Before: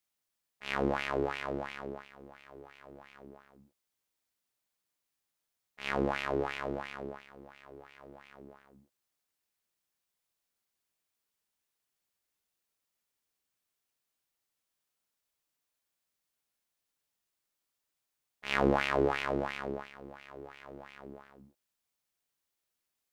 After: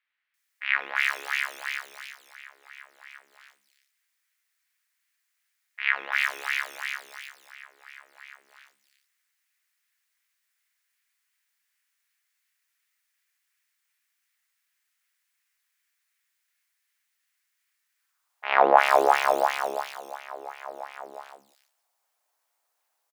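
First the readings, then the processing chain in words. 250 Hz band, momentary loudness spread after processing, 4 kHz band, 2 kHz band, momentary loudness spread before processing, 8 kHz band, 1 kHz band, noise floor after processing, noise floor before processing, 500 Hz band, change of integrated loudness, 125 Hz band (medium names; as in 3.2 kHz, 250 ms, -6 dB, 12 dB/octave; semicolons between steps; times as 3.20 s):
-7.0 dB, 23 LU, +7.5 dB, +11.0 dB, 24 LU, +13.0 dB, +12.5 dB, -78 dBFS, under -85 dBFS, +5.5 dB, +8.5 dB, under -20 dB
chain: in parallel at -11 dB: decimation with a swept rate 10×, swing 100% 2.7 Hz; on the sum: high-pass sweep 1.9 kHz -> 740 Hz, 17.93–18.48 s; bands offset in time lows, highs 340 ms, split 3.3 kHz; trim +7 dB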